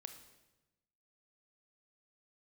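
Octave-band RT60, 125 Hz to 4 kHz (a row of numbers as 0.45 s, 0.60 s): 1.4 s, 1.3 s, 1.1 s, 1.0 s, 0.95 s, 0.90 s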